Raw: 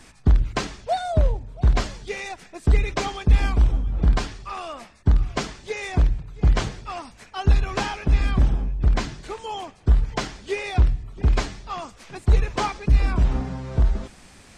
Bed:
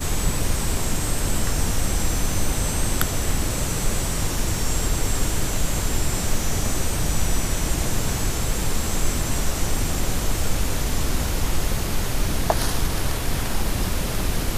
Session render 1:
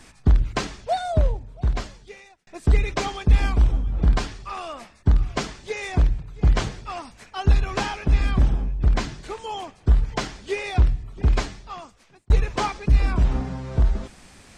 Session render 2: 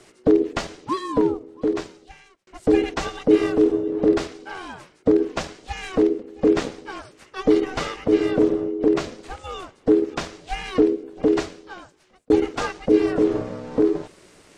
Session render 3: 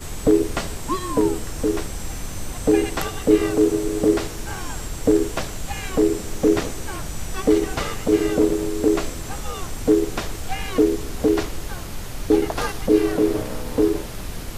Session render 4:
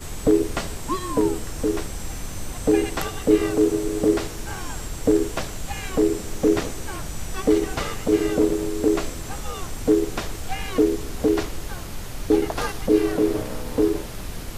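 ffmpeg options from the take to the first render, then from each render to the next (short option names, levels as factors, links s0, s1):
-filter_complex "[0:a]asplit=3[s0][s1][s2];[s0]atrim=end=2.47,asetpts=PTS-STARTPTS,afade=t=out:st=1.13:d=1.34[s3];[s1]atrim=start=2.47:end=12.3,asetpts=PTS-STARTPTS,afade=t=in:d=0.004:c=hsin,afade=t=out:st=8.86:d=0.97[s4];[s2]atrim=start=12.3,asetpts=PTS-STARTPTS,afade=t=in:d=0.004:c=hsin[s5];[s3][s4][s5]concat=n=3:v=0:a=1"
-filter_complex "[0:a]asplit=2[s0][s1];[s1]aeval=exprs='sgn(val(0))*max(abs(val(0))-0.0188,0)':c=same,volume=0.251[s2];[s0][s2]amix=inputs=2:normalize=0,aeval=exprs='val(0)*sin(2*PI*370*n/s)':c=same"
-filter_complex "[1:a]volume=0.398[s0];[0:a][s0]amix=inputs=2:normalize=0"
-af "volume=0.841"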